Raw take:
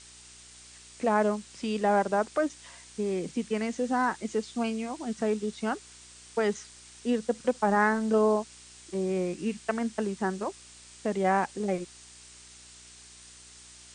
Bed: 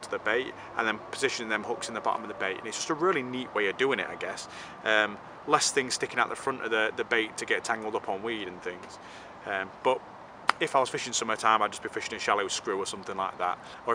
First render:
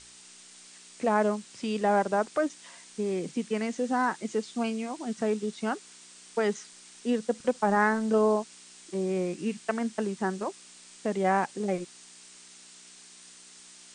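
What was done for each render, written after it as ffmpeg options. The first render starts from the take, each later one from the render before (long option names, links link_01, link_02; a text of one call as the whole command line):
ffmpeg -i in.wav -af "bandreject=frequency=60:width_type=h:width=4,bandreject=frequency=120:width_type=h:width=4" out.wav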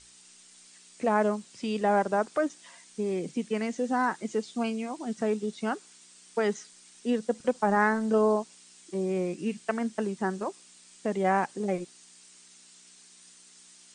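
ffmpeg -i in.wav -af "afftdn=noise_reduction=6:noise_floor=-52" out.wav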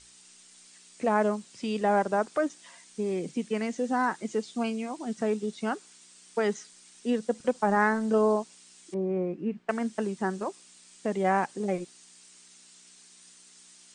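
ffmpeg -i in.wav -filter_complex "[0:a]asettb=1/sr,asplit=3[link_01][link_02][link_03];[link_01]atrim=end=8.944[link_04];[link_02]atrim=start=8.94:end=9.69,asetpts=PTS-STARTPTS,afade=type=in:duration=0.004:curve=qsin,afade=type=out:start_time=0.746:duration=0.004:curve=qsin,lowpass=1400[link_05];[link_03]atrim=start=9.686[link_06];[link_04][link_05]acrossfade=duration=0.004:curve1=hsin:curve2=qsin[link_07];[link_07][link_06]acrossfade=duration=0.004:curve1=qsin:curve2=hsin" out.wav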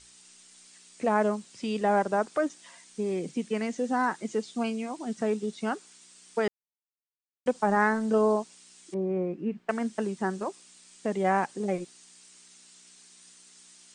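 ffmpeg -i in.wav -filter_complex "[0:a]asplit=3[link_01][link_02][link_03];[link_01]atrim=end=6.48,asetpts=PTS-STARTPTS,afade=type=out:start_time=6.476:duration=0.004:curve=hsin[link_04];[link_02]atrim=start=6.48:end=7.46,asetpts=PTS-STARTPTS,volume=0[link_05];[link_03]atrim=start=7.46,asetpts=PTS-STARTPTS,afade=type=in:duration=0.004:curve=hsin[link_06];[link_04][link_05][link_06]concat=n=3:v=0:a=1" out.wav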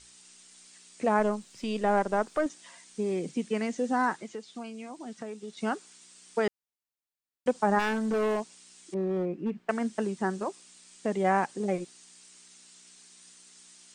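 ffmpeg -i in.wav -filter_complex "[0:a]asettb=1/sr,asplit=3[link_01][link_02][link_03];[link_01]atrim=end=1.194[link_04];[link_02]atrim=start=1.19:end=2.46,asetpts=PTS-STARTPTS,afade=type=in:duration=0.004:curve=qsin,afade=type=out:start_time=1.266:duration=0.004:curve=qsin,aeval=exprs='if(lt(val(0),0),0.708*val(0),val(0))':channel_layout=same[link_05];[link_03]atrim=start=2.456[link_06];[link_04][link_05]acrossfade=duration=0.004:curve1=hsin:curve2=qsin[link_07];[link_07][link_06]acrossfade=duration=0.004:curve1=qsin:curve2=hsin,asettb=1/sr,asplit=3[link_08][link_09][link_10];[link_08]atrim=end=4.154[link_11];[link_09]atrim=start=4.15:end=5.57,asetpts=PTS-STARTPTS,afade=type=in:duration=0.004:curve=qsin,afade=type=out:start_time=1.416:duration=0.004:curve=qsin,acrossover=split=600|4900[link_12][link_13][link_14];[link_12]acompressor=threshold=-41dB:ratio=4[link_15];[link_13]acompressor=threshold=-46dB:ratio=4[link_16];[link_14]acompressor=threshold=-60dB:ratio=4[link_17];[link_15][link_16][link_17]amix=inputs=3:normalize=0[link_18];[link_10]atrim=start=5.566[link_19];[link_11][link_18]acrossfade=duration=0.004:curve1=hsin:curve2=qsin[link_20];[link_20][link_19]acrossfade=duration=0.004:curve1=qsin:curve2=hsin,asplit=3[link_21][link_22][link_23];[link_21]afade=type=out:start_time=7.78:duration=0.02[link_24];[link_22]volume=24.5dB,asoftclip=hard,volume=-24.5dB,afade=type=in:start_time=7.78:duration=0.02,afade=type=out:start_time=9.62:duration=0.02[link_25];[link_23]afade=type=in:start_time=9.62:duration=0.02[link_26];[link_24][link_25][link_26]amix=inputs=3:normalize=0" out.wav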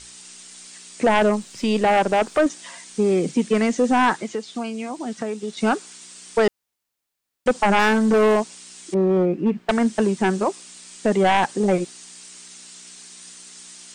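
ffmpeg -i in.wav -af "aeval=exprs='0.282*sin(PI/2*2.51*val(0)/0.282)':channel_layout=same" out.wav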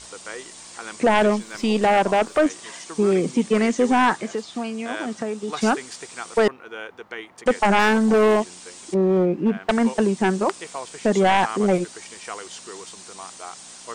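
ffmpeg -i in.wav -i bed.wav -filter_complex "[1:a]volume=-8.5dB[link_01];[0:a][link_01]amix=inputs=2:normalize=0" out.wav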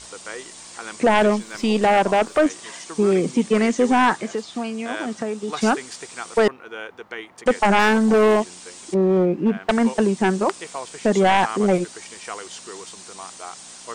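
ffmpeg -i in.wav -af "volume=1dB" out.wav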